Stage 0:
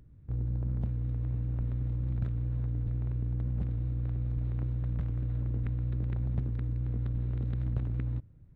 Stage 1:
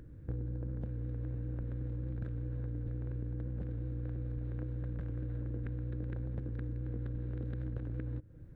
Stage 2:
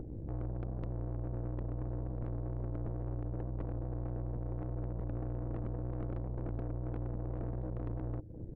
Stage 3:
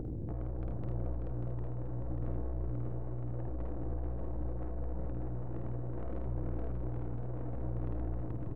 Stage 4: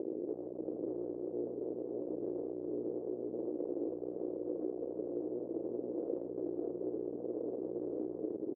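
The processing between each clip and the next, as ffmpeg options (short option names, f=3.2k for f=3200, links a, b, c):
-af "equalizer=f=315:t=o:w=0.33:g=10,equalizer=f=500:t=o:w=0.33:g=12,equalizer=f=1.6k:t=o:w=0.33:g=10,acompressor=threshold=-39dB:ratio=6,volume=4dB"
-af "firequalizer=gain_entry='entry(200,0);entry(370,7);entry(1200,-17)':delay=0.05:min_phase=1,alimiter=level_in=8dB:limit=-24dB:level=0:latency=1:release=46,volume=-8dB,aeval=exprs='(tanh(200*val(0)+0.7)-tanh(0.7))/200':c=same,volume=11dB"
-filter_complex "[0:a]asplit=2[a][b];[b]aecho=0:1:51|79|304|432:0.668|0.422|0.15|0.531[c];[a][c]amix=inputs=2:normalize=0,alimiter=level_in=10dB:limit=-24dB:level=0:latency=1:release=83,volume=-10dB,asplit=2[d][e];[e]aecho=0:1:589:0.531[f];[d][f]amix=inputs=2:normalize=0,volume=4dB"
-filter_complex "[0:a]asplit=2[a][b];[b]asoftclip=type=hard:threshold=-37.5dB,volume=-3dB[c];[a][c]amix=inputs=2:normalize=0,acrusher=bits=4:mix=0:aa=0.5,asuperpass=centerf=400:order=4:qfactor=2,volume=6dB"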